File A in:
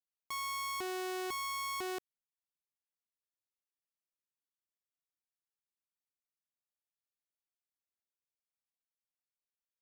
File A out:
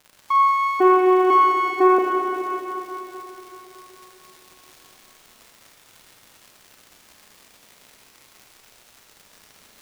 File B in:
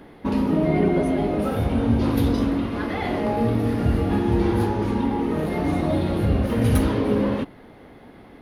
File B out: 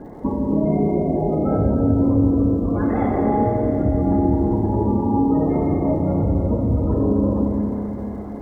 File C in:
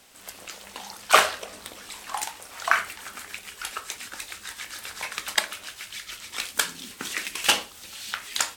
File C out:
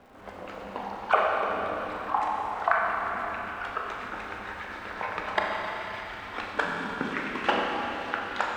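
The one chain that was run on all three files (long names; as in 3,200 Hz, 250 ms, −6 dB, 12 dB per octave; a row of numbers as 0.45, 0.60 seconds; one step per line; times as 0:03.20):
gate on every frequency bin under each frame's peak −20 dB strong
low-pass filter 1,100 Hz 12 dB per octave
downward compressor 6 to 1, threshold −27 dBFS
surface crackle 230 per second −60 dBFS
four-comb reverb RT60 4 s, combs from 29 ms, DRR −1 dB
normalise the peak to −6 dBFS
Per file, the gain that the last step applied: +24.0, +8.0, +7.5 decibels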